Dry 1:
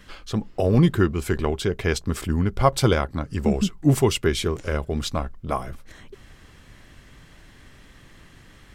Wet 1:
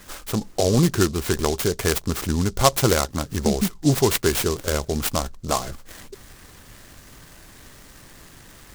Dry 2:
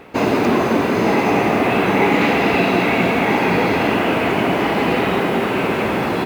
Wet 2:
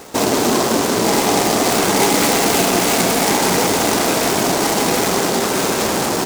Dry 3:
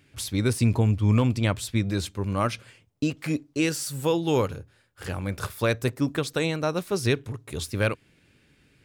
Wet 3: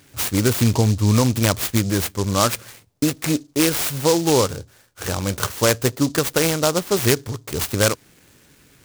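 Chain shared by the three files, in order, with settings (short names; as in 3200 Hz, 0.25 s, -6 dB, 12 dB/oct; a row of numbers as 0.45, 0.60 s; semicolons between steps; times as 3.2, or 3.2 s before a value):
low shelf 370 Hz -6 dB; in parallel at -2.5 dB: compressor, threshold -27 dBFS; on the sum: noise-modulated delay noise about 5300 Hz, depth 0.093 ms; normalise peaks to -3 dBFS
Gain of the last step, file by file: +1.5, +1.0, +6.0 dB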